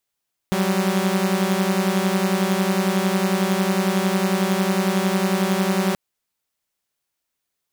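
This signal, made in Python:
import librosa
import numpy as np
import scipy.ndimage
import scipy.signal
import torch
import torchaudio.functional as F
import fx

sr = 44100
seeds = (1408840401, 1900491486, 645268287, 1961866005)

y = fx.chord(sr, length_s=5.43, notes=(54, 55), wave='saw', level_db=-18.5)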